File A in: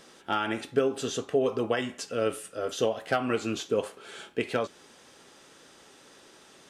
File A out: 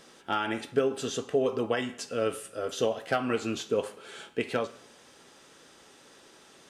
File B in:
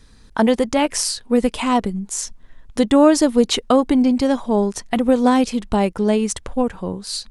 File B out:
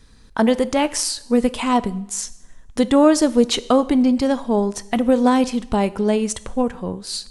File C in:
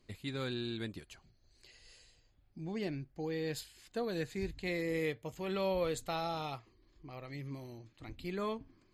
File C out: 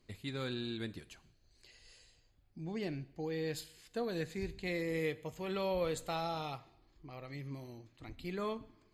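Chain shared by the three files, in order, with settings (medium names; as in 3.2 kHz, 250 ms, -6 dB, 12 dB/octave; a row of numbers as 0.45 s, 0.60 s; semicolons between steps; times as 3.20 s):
two-slope reverb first 0.74 s, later 2 s, from -25 dB, DRR 15 dB; trim -1 dB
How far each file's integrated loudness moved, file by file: -1.0 LU, -1.0 LU, -1.0 LU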